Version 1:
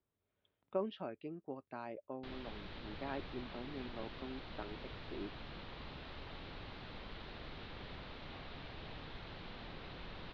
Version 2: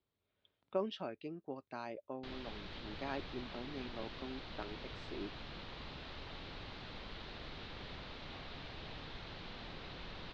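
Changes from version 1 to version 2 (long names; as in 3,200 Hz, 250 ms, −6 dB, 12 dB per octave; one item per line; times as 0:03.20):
background: add high-frequency loss of the air 170 metres
master: remove high-frequency loss of the air 300 metres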